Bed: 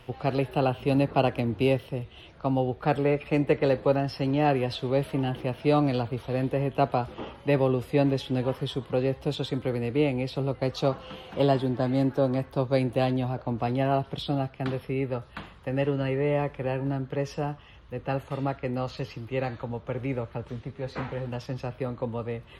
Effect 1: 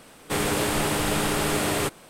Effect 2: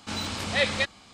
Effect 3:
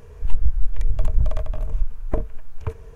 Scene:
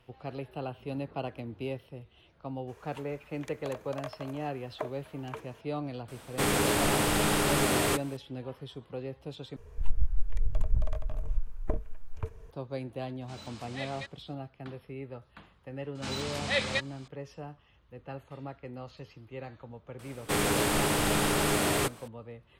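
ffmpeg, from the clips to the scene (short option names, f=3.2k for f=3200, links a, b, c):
-filter_complex "[3:a]asplit=2[a][b];[1:a]asplit=2[c][d];[2:a]asplit=2[e][f];[0:a]volume=-12.5dB[g];[a]highpass=710[h];[g]asplit=2[i][j];[i]atrim=end=9.564[k];[b]atrim=end=2.95,asetpts=PTS-STARTPTS,volume=-8dB[l];[j]atrim=start=12.506[m];[h]atrim=end=2.95,asetpts=PTS-STARTPTS,volume=-0.5dB,afade=t=in:d=0.02,afade=t=out:st=2.93:d=0.02,adelay=2670[n];[c]atrim=end=2.09,asetpts=PTS-STARTPTS,volume=-2dB,afade=t=in:d=0.004:c=hsin,afade=t=out:st=2.086:d=0.004:c=hsin,adelay=6080[o];[e]atrim=end=1.13,asetpts=PTS-STARTPTS,volume=-16.5dB,afade=t=in:d=0.004:c=hsin,afade=t=out:st=1.126:d=0.004:c=hsin,adelay=13210[p];[f]atrim=end=1.13,asetpts=PTS-STARTPTS,volume=-4.5dB,afade=t=in:d=0.004:c=hsin,afade=t=out:st=1.126:d=0.004:c=hsin,adelay=15950[q];[d]atrim=end=2.09,asetpts=PTS-STARTPTS,volume=-2.5dB,afade=t=in:d=0.004:c=hsin,afade=t=out:st=2.086:d=0.004:c=hsin,adelay=19990[r];[k][l]acrossfade=d=0.004:c1=hsin:c2=hsin[s];[s][m]acrossfade=d=0.004:c1=hsin:c2=hsin[t];[t][n][o][p][q][r]amix=inputs=6:normalize=0"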